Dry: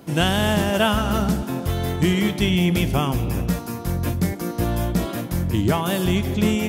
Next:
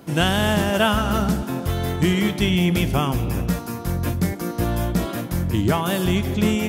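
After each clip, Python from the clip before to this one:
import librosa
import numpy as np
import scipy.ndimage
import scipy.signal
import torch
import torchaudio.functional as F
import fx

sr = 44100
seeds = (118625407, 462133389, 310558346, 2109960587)

y = fx.peak_eq(x, sr, hz=1400.0, db=2.0, octaves=0.77)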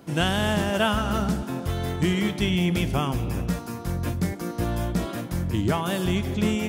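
y = fx.peak_eq(x, sr, hz=13000.0, db=-7.0, octaves=0.31)
y = F.gain(torch.from_numpy(y), -4.0).numpy()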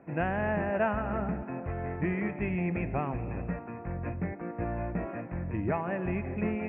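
y = scipy.signal.sosfilt(scipy.signal.cheby1(6, 6, 2600.0, 'lowpass', fs=sr, output='sos'), x)
y = F.gain(torch.from_numpy(y), -2.5).numpy()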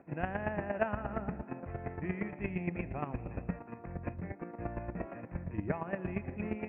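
y = fx.chopper(x, sr, hz=8.6, depth_pct=65, duty_pct=15)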